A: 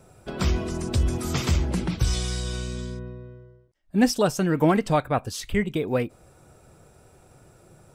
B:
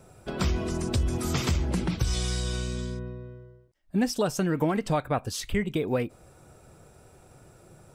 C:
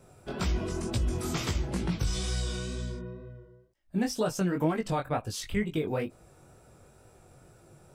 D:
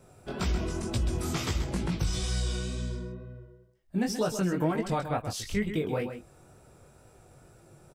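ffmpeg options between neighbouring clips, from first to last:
-af "acompressor=threshold=-22dB:ratio=4"
-af "flanger=delay=17.5:depth=4.9:speed=2.1"
-af "aecho=1:1:131:0.335"

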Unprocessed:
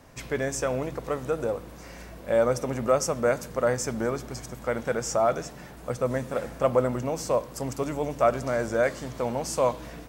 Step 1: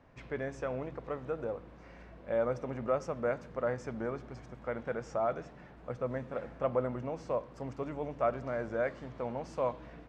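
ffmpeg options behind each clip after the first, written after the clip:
-af "lowpass=2.6k,volume=-8.5dB"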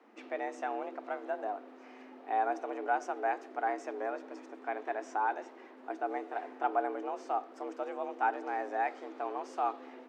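-af "afreqshift=200"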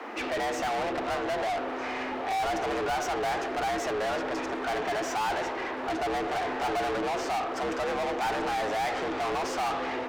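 -filter_complex "[0:a]asplit=2[a][b];[b]highpass=f=720:p=1,volume=38dB,asoftclip=type=tanh:threshold=-17.5dB[c];[a][c]amix=inputs=2:normalize=0,lowpass=f=4.2k:p=1,volume=-6dB,volume=-5dB"

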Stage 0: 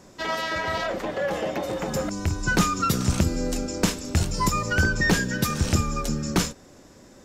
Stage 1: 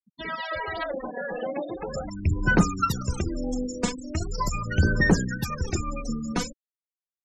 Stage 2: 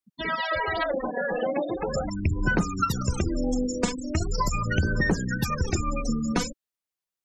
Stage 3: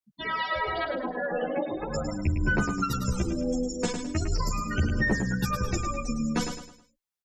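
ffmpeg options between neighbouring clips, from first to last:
-af "aphaser=in_gain=1:out_gain=1:delay=4.2:decay=0.62:speed=0.4:type=sinusoidal,afftfilt=real='re*gte(hypot(re,im),0.0631)':imag='im*gte(hypot(re,im),0.0631)':win_size=1024:overlap=0.75,volume=-5.5dB"
-af "acompressor=threshold=-25dB:ratio=6,volume=4.5dB"
-filter_complex "[0:a]asplit=2[a][b];[b]aecho=0:1:106|212|318|424:0.447|0.161|0.0579|0.0208[c];[a][c]amix=inputs=2:normalize=0,asplit=2[d][e];[e]adelay=10.9,afreqshift=-0.42[f];[d][f]amix=inputs=2:normalize=1"

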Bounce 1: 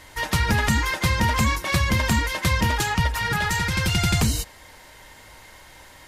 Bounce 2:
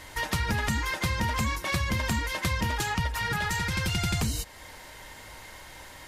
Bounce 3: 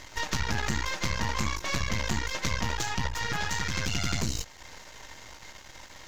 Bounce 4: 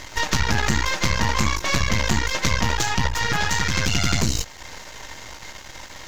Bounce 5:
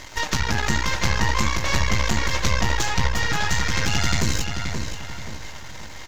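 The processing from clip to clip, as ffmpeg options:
-af "acompressor=threshold=-32dB:ratio=2,volume=1dB"
-af "aeval=exprs='max(val(0),0)':c=same,highshelf=f=7.8k:t=q:w=3:g=-6.5,volume=2dB"
-af "acrusher=bits=11:mix=0:aa=0.000001,volume=8.5dB"
-filter_complex "[0:a]asplit=2[a][b];[b]adelay=528,lowpass=f=4.7k:p=1,volume=-5.5dB,asplit=2[c][d];[d]adelay=528,lowpass=f=4.7k:p=1,volume=0.41,asplit=2[e][f];[f]adelay=528,lowpass=f=4.7k:p=1,volume=0.41,asplit=2[g][h];[h]adelay=528,lowpass=f=4.7k:p=1,volume=0.41,asplit=2[i][j];[j]adelay=528,lowpass=f=4.7k:p=1,volume=0.41[k];[a][c][e][g][i][k]amix=inputs=6:normalize=0,volume=-2dB"

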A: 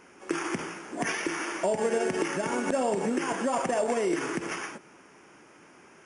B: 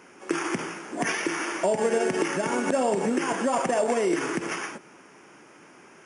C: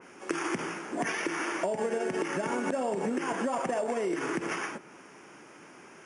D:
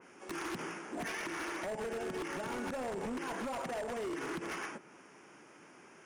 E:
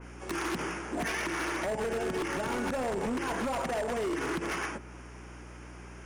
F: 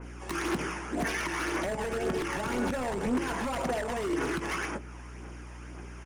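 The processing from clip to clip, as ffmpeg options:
-af "highpass=98,volume=3dB"
-af "acompressor=threshold=-27dB:ratio=6,adynamicequalizer=threshold=0.00355:dfrequency=2800:dqfactor=0.7:tfrequency=2800:tqfactor=0.7:attack=5:release=100:ratio=0.375:range=2:mode=cutabove:tftype=highshelf"
-af "aeval=exprs='0.0447*(abs(mod(val(0)/0.0447+3,4)-2)-1)':c=same,volume=-6dB"
-af "aeval=exprs='val(0)+0.00224*(sin(2*PI*60*n/s)+sin(2*PI*2*60*n/s)/2+sin(2*PI*3*60*n/s)/3+sin(2*PI*4*60*n/s)/4+sin(2*PI*5*60*n/s)/5)':c=same,volume=6.5dB"
-filter_complex "[0:a]aphaser=in_gain=1:out_gain=1:delay=1.2:decay=0.37:speed=1.9:type=triangular,asplit=2[a][b];[b]adelay=20,volume=-13.5dB[c];[a][c]amix=inputs=2:normalize=0"

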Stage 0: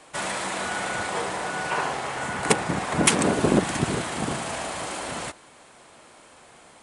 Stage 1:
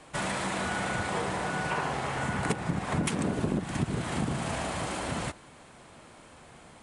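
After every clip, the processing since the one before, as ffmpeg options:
-af "bass=f=250:g=10,treble=f=4k:g=-3,acompressor=threshold=-24dB:ratio=6,volume=-2dB"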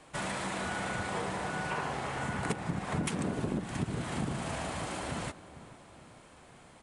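-filter_complex "[0:a]asplit=2[a][b];[b]adelay=447,lowpass=f=980:p=1,volume=-14dB,asplit=2[c][d];[d]adelay=447,lowpass=f=980:p=1,volume=0.48,asplit=2[e][f];[f]adelay=447,lowpass=f=980:p=1,volume=0.48,asplit=2[g][h];[h]adelay=447,lowpass=f=980:p=1,volume=0.48,asplit=2[i][j];[j]adelay=447,lowpass=f=980:p=1,volume=0.48[k];[a][c][e][g][i][k]amix=inputs=6:normalize=0,volume=-4dB"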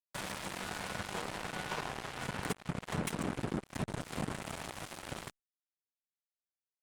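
-af "acrusher=bits=4:mix=0:aa=0.5,volume=-3.5dB" -ar 48000 -c:a libopus -b:a 64k

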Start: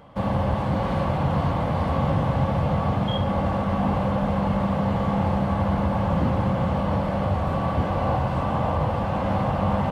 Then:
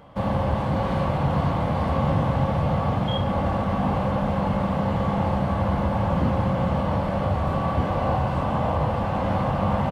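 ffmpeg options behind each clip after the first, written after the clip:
-filter_complex "[0:a]asplit=2[a][b];[b]adelay=28,volume=-12dB[c];[a][c]amix=inputs=2:normalize=0"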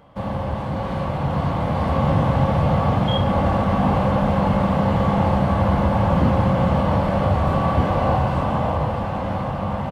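-af "dynaudnorm=f=370:g=9:m=7.5dB,volume=-2dB"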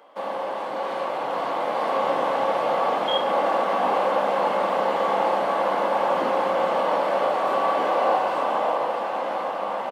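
-af "highpass=f=360:w=0.5412,highpass=f=360:w=1.3066,volume=1dB"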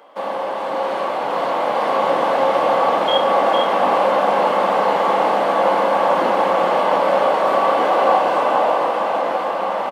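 -af "aecho=1:1:456:0.531,volume=5dB"

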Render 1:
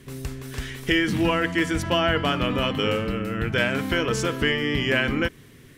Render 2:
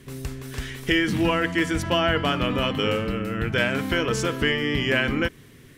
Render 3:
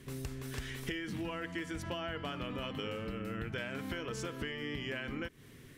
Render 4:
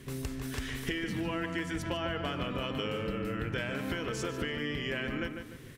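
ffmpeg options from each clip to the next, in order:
-af anull
-af "acompressor=threshold=-30dB:ratio=12,volume=-5.5dB"
-filter_complex "[0:a]asplit=2[a][b];[b]adelay=148,lowpass=f=3k:p=1,volume=-6.5dB,asplit=2[c][d];[d]adelay=148,lowpass=f=3k:p=1,volume=0.39,asplit=2[e][f];[f]adelay=148,lowpass=f=3k:p=1,volume=0.39,asplit=2[g][h];[h]adelay=148,lowpass=f=3k:p=1,volume=0.39,asplit=2[i][j];[j]adelay=148,lowpass=f=3k:p=1,volume=0.39[k];[a][c][e][g][i][k]amix=inputs=6:normalize=0,volume=4dB"

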